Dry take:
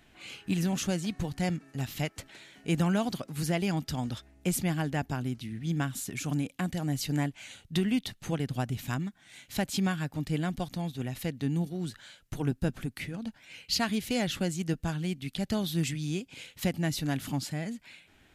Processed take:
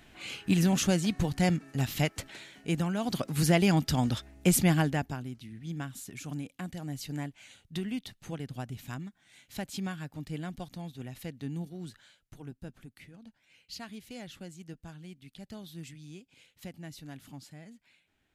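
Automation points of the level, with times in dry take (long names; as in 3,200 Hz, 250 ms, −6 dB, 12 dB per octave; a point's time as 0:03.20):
0:02.38 +4 dB
0:02.95 −5.5 dB
0:03.20 +5.5 dB
0:04.78 +5.5 dB
0:05.27 −7 dB
0:11.95 −7 dB
0:12.40 −14.5 dB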